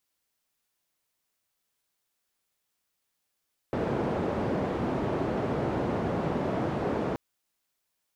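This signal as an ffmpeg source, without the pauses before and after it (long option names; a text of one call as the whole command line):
ffmpeg -f lavfi -i "anoisesrc=color=white:duration=3.43:sample_rate=44100:seed=1,highpass=frequency=90,lowpass=frequency=510,volume=-7.5dB" out.wav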